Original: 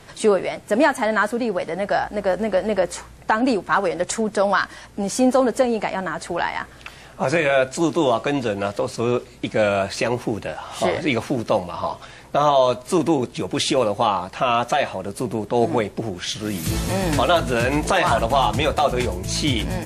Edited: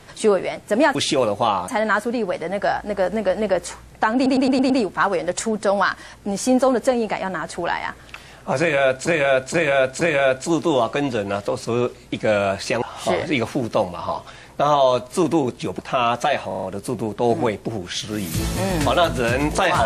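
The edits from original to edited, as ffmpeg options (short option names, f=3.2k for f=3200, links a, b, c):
-filter_complex "[0:a]asplit=17[a][b][c][d][e][f][g][h][i][j][k][l][m][n][o][p][q];[a]atrim=end=0.952[r];[b]atrim=start=13.538:end=14.272[s];[c]atrim=start=0.948:end=3.532[t];[d]atrim=start=3.418:end=3.532[u];[e]atrim=start=3.418:end=3.532[v];[f]atrim=start=3.418:end=3.532[w];[g]atrim=start=3.418:end=3.532[x];[h]atrim=start=3.418:end=7.792[y];[i]atrim=start=7.318:end=7.792[z];[j]atrim=start=7.318:end=7.792[aa];[k]atrim=start=7.318:end=10.132[ab];[l]atrim=start=10.568:end=13.542[ac];[m]atrim=start=14.268:end=14.992[ad];[n]atrim=start=14.948:end=14.992[ae];[o]atrim=start=14.948:end=14.992[af];[p]atrim=start=14.948:end=14.992[ag];[q]atrim=start=14.948[ah];[r][s]acrossfade=d=0.004:c1=hsin:c2=hsin[ai];[ai][t]acrossfade=d=0.004:c1=hsin:c2=hsin[aj];[aj][u]acrossfade=d=0.004:c1=hsin:c2=hsin[ak];[ak][v]acrossfade=d=0.004:c1=hsin:c2=hsin[al];[al][w]acrossfade=d=0.004:c1=hsin:c2=hsin[am];[am][x]acrossfade=d=0.004:c1=hsin:c2=hsin[an];[an][y]acrossfade=d=0.004:c1=hsin:c2=hsin[ao];[ao][z]acrossfade=d=0.004:c1=hsin:c2=hsin[ap];[ap][aa]acrossfade=d=0.004:c1=hsin:c2=hsin[aq];[aq][ab]acrossfade=d=0.004:c1=hsin:c2=hsin[ar];[ar][ac]acrossfade=d=0.004:c1=hsin:c2=hsin[as];[as][ad]acrossfade=d=0.004:c1=hsin:c2=hsin[at];[at][ae]acrossfade=d=0.004:c1=hsin:c2=hsin[au];[au][af]acrossfade=d=0.004:c1=hsin:c2=hsin[av];[av][ag]acrossfade=d=0.004:c1=hsin:c2=hsin[aw];[aw][ah]acrossfade=d=0.004:c1=hsin:c2=hsin"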